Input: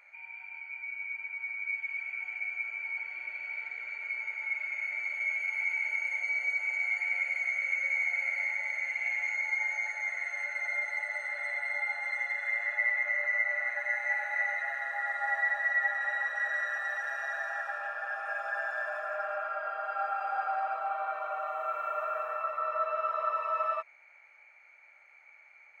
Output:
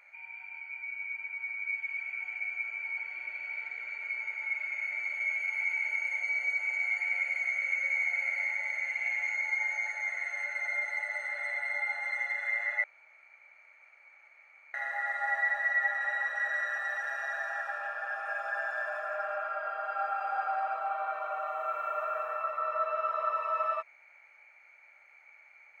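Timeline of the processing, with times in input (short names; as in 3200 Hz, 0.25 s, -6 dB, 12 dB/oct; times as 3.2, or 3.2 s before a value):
12.84–14.74 room tone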